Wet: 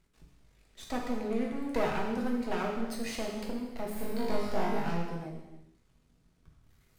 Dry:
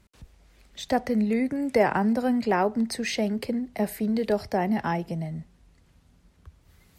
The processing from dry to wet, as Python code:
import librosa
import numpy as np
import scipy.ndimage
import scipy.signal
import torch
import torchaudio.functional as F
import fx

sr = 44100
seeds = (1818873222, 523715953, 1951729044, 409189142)

y = np.maximum(x, 0.0)
y = fx.room_flutter(y, sr, wall_m=3.4, rt60_s=0.57, at=(3.95, 4.88), fade=0.02)
y = fx.rev_gated(y, sr, seeds[0], gate_ms=390, shape='falling', drr_db=-1.5)
y = y * 10.0 ** (-8.0 / 20.0)